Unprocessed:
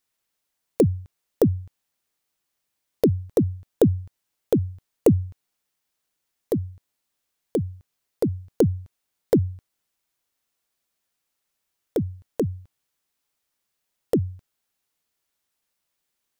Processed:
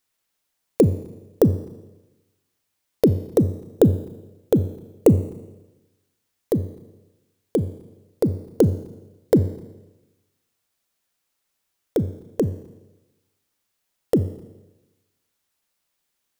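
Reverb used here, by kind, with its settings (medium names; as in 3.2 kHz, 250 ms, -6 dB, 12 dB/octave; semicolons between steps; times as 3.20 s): Schroeder reverb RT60 1.1 s, combs from 28 ms, DRR 13 dB; trim +2.5 dB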